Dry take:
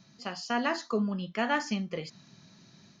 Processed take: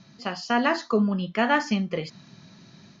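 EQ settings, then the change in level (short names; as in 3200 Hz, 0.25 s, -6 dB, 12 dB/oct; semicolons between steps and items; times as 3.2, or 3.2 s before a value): air absorption 82 m; +7.0 dB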